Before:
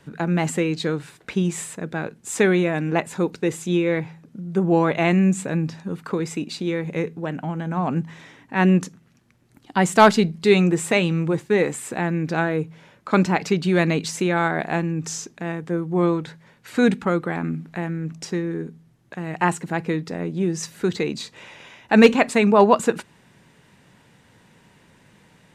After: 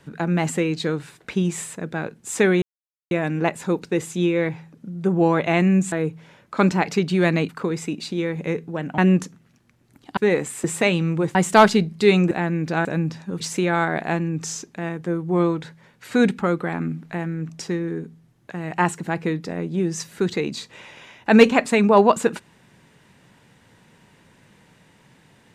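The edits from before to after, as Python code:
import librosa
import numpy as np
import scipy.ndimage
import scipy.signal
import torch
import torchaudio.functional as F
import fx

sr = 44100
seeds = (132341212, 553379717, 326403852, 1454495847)

y = fx.edit(x, sr, fx.insert_silence(at_s=2.62, length_s=0.49),
    fx.swap(start_s=5.43, length_s=0.55, other_s=12.46, other_length_s=1.57),
    fx.cut(start_s=7.47, length_s=1.12),
    fx.swap(start_s=9.78, length_s=0.96, other_s=11.45, other_length_s=0.47), tone=tone)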